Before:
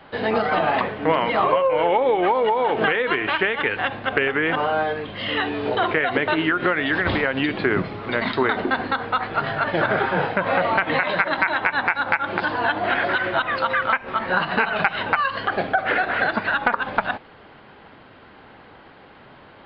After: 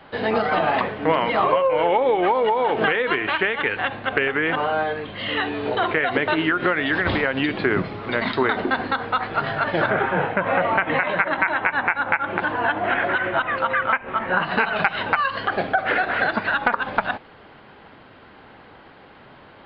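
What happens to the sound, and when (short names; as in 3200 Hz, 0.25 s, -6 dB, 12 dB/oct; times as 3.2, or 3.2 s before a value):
3.18–6.03 elliptic low-pass 4500 Hz
9.9–14.45 LPF 3000 Hz 24 dB/oct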